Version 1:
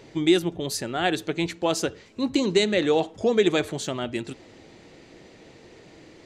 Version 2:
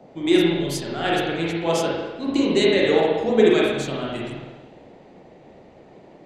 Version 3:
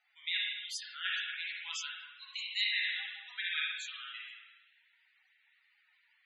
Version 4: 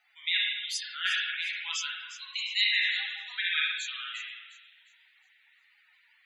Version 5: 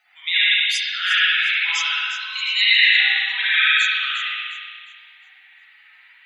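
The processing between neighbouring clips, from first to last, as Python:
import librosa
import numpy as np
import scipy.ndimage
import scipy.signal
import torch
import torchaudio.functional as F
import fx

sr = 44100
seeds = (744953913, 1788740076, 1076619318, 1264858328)

y1 = fx.rev_spring(x, sr, rt60_s=1.5, pass_ms=(36, 50), chirp_ms=35, drr_db=-5.0)
y1 = fx.dmg_noise_band(y1, sr, seeds[0], low_hz=140.0, high_hz=740.0, level_db=-38.0)
y1 = fx.band_widen(y1, sr, depth_pct=40)
y1 = y1 * 10.0 ** (-2.5 / 20.0)
y2 = scipy.signal.sosfilt(scipy.signal.cheby2(4, 70, 350.0, 'highpass', fs=sr, output='sos'), y1)
y2 = fx.spec_topn(y2, sr, count=64)
y2 = y2 * 10.0 ** (-5.5 / 20.0)
y3 = fx.echo_wet_highpass(y2, sr, ms=356, feedback_pct=35, hz=4000.0, wet_db=-11.5)
y3 = y3 * 10.0 ** (6.5 / 20.0)
y4 = fx.rev_spring(y3, sr, rt60_s=1.6, pass_ms=(54,), chirp_ms=65, drr_db=-8.0)
y4 = y4 * 10.0 ** (5.5 / 20.0)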